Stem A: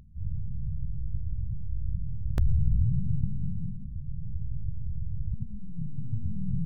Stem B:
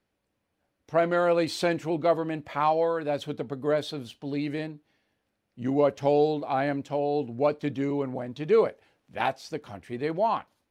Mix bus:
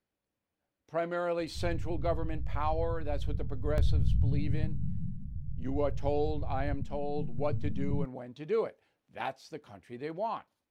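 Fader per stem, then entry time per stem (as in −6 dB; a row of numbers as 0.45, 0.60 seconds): −2.5, −9.0 decibels; 1.40, 0.00 seconds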